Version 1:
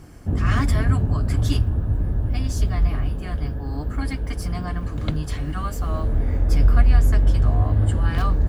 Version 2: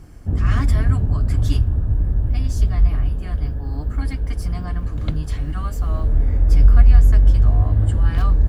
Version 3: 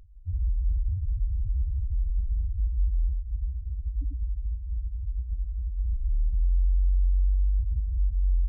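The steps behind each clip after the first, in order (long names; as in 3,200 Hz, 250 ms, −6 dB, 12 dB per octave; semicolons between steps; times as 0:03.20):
low-shelf EQ 79 Hz +10.5 dB; level −3 dB
phaser with its sweep stopped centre 800 Hz, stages 8; gain into a clipping stage and back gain 16 dB; spectral peaks only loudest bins 1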